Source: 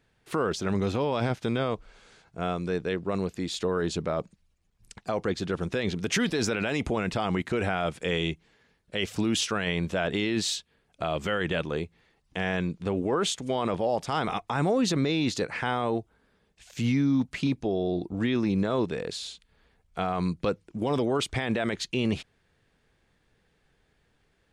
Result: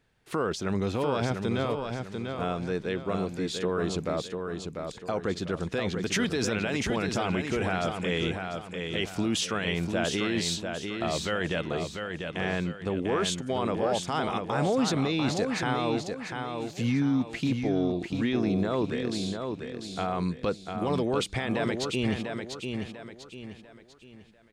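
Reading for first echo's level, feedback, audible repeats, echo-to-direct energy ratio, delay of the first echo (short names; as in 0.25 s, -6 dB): -5.5 dB, 37%, 4, -5.0 dB, 0.695 s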